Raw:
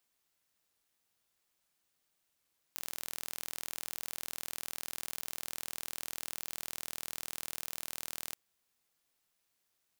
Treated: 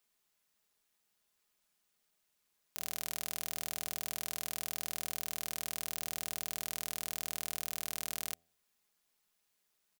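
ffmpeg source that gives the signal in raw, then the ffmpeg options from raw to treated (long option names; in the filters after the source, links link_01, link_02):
-f lavfi -i "aevalsrc='0.266*eq(mod(n,1102),0)':duration=5.58:sample_rate=44100"
-af "aecho=1:1:4.8:0.44,bandreject=frequency=83.98:width_type=h:width=4,bandreject=frequency=167.96:width_type=h:width=4,bandreject=frequency=251.94:width_type=h:width=4,bandreject=frequency=335.92:width_type=h:width=4,bandreject=frequency=419.9:width_type=h:width=4,bandreject=frequency=503.88:width_type=h:width=4,bandreject=frequency=587.86:width_type=h:width=4,bandreject=frequency=671.84:width_type=h:width=4,bandreject=frequency=755.82:width_type=h:width=4"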